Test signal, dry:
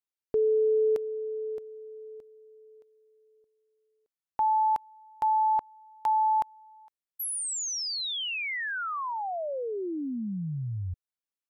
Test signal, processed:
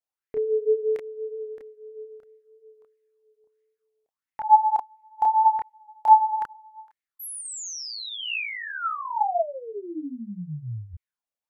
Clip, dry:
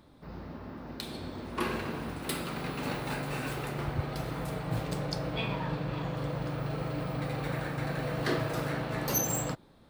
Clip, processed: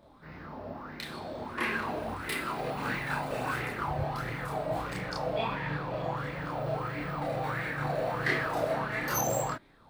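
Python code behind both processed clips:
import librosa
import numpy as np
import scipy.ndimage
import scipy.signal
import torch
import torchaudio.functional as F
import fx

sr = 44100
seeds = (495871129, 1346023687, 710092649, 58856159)

y = fx.chorus_voices(x, sr, voices=2, hz=0.7, base_ms=29, depth_ms=3.4, mix_pct=50)
y = fx.bell_lfo(y, sr, hz=1.5, low_hz=600.0, high_hz=2100.0, db=15)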